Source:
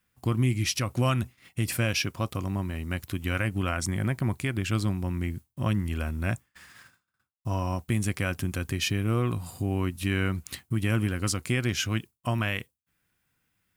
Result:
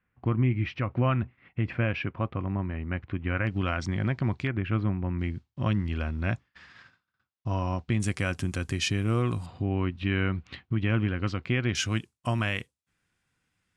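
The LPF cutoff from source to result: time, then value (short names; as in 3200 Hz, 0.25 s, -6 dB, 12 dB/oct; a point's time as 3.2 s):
LPF 24 dB/oct
2400 Hz
from 3.47 s 4700 Hz
from 4.47 s 2400 Hz
from 5.19 s 4800 Hz
from 8 s 8900 Hz
from 9.46 s 3500 Hz
from 11.75 s 9100 Hz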